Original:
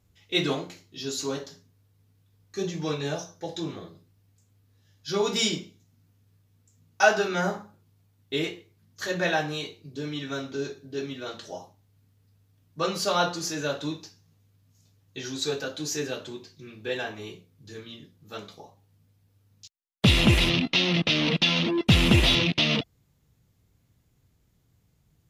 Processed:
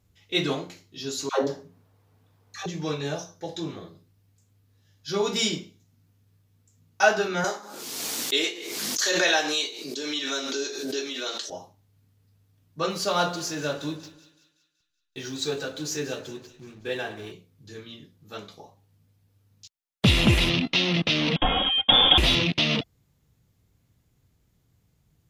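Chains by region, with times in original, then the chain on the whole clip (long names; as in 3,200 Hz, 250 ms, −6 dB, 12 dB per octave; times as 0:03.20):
0:01.29–0:02.66: parametric band 810 Hz +13.5 dB 2.4 octaves + all-pass dispersion lows, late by 146 ms, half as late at 490 Hz
0:07.44–0:11.50: high-pass filter 290 Hz 24 dB per octave + parametric band 6,300 Hz +13 dB 2.2 octaves + background raised ahead of every attack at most 32 dB per second
0:12.90–0:17.32: slack as between gear wheels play −45 dBFS + echo with a time of its own for lows and highs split 1,800 Hz, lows 96 ms, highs 188 ms, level −14.5 dB
0:21.36–0:22.18: comb filter 3.7 ms, depth 67% + voice inversion scrambler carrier 3,500 Hz
whole clip: no processing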